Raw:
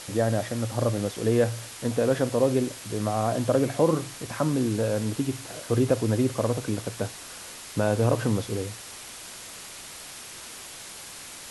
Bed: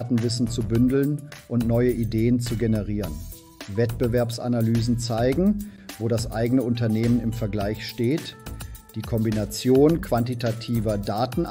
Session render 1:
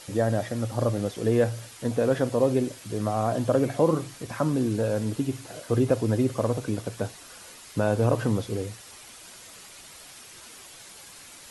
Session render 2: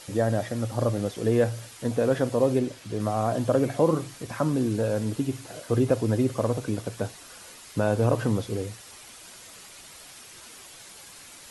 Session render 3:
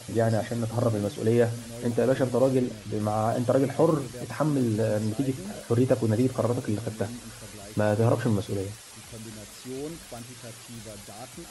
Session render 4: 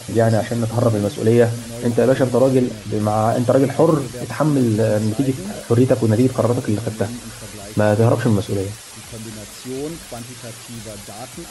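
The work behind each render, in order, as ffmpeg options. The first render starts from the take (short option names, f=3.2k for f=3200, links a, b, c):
-af "afftdn=nr=7:nf=-42"
-filter_complex "[0:a]asettb=1/sr,asplit=3[a][b][c];[a]atrim=end=2.594[d];[b]atrim=start=2.59:end=3,asetpts=PTS-STARTPTS,afade=t=in:d=0.004:c=qsin,afade=t=out:st=0.406:d=0.004:c=qsin,acrossover=split=6000[e][f];[f]acompressor=threshold=-54dB:ratio=4:attack=1:release=60[g];[e][g]amix=inputs=2:normalize=0[h];[c]atrim=start=2.996[i];[d][h]acrossfade=d=0.004:c1=hsin:c2=qsin[j];[j][i]acrossfade=d=0.004:c1=qsin:c2=hsin"
-filter_complex "[1:a]volume=-19dB[a];[0:a][a]amix=inputs=2:normalize=0"
-af "volume=8.5dB,alimiter=limit=-3dB:level=0:latency=1"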